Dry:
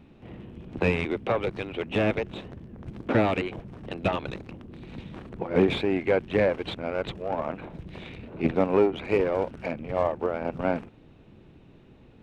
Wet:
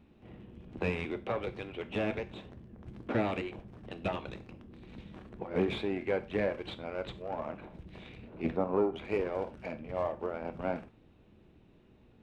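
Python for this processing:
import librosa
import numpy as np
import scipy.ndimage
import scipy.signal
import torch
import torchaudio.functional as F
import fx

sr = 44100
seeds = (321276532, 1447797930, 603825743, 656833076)

y = fx.high_shelf_res(x, sr, hz=1600.0, db=-8.5, q=1.5, at=(8.56, 8.96))
y = fx.rev_gated(y, sr, seeds[0], gate_ms=130, shape='falling', drr_db=9.5)
y = y * 10.0 ** (-8.5 / 20.0)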